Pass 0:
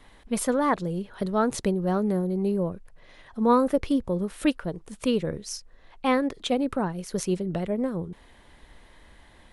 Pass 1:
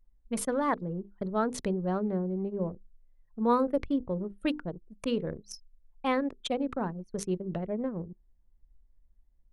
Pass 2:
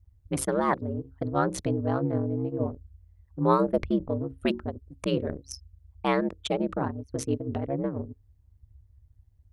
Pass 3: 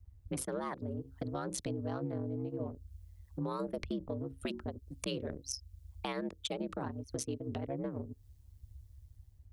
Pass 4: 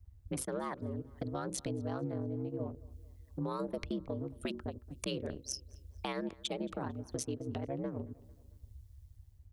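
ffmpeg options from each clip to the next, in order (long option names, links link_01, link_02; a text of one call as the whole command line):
ffmpeg -i in.wav -af "bandreject=frequency=50:width_type=h:width=6,bandreject=frequency=100:width_type=h:width=6,bandreject=frequency=150:width_type=h:width=6,bandreject=frequency=200:width_type=h:width=6,bandreject=frequency=250:width_type=h:width=6,bandreject=frequency=300:width_type=h:width=6,bandreject=frequency=350:width_type=h:width=6,bandreject=frequency=400:width_type=h:width=6,bandreject=frequency=450:width_type=h:width=6,bandreject=frequency=500:width_type=h:width=6,anlmdn=15.8,volume=-4.5dB" out.wav
ffmpeg -i in.wav -af "aeval=exprs='val(0)*sin(2*PI*68*n/s)':channel_layout=same,volume=6dB" out.wav
ffmpeg -i in.wav -filter_complex "[0:a]acrossover=split=240|800|3100[link_01][link_02][link_03][link_04];[link_04]dynaudnorm=framelen=230:gausssize=5:maxgain=11dB[link_05];[link_01][link_02][link_03][link_05]amix=inputs=4:normalize=0,alimiter=limit=-18dB:level=0:latency=1:release=61,acompressor=threshold=-41dB:ratio=2.5,volume=1.5dB" out.wav
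ffmpeg -i in.wav -filter_complex "[0:a]asplit=2[link_01][link_02];[link_02]adelay=224,lowpass=frequency=4600:poles=1,volume=-22dB,asplit=2[link_03][link_04];[link_04]adelay=224,lowpass=frequency=4600:poles=1,volume=0.48,asplit=2[link_05][link_06];[link_06]adelay=224,lowpass=frequency=4600:poles=1,volume=0.48[link_07];[link_01][link_03][link_05][link_07]amix=inputs=4:normalize=0" out.wav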